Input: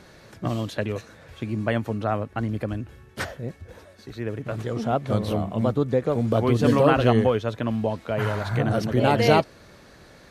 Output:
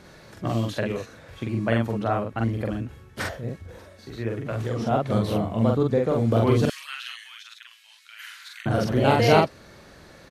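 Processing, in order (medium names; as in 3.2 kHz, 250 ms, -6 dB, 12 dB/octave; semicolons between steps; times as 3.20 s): 6.65–8.66 s: Bessel high-pass 2.8 kHz, order 6; doubling 44 ms -2 dB; trim -1 dB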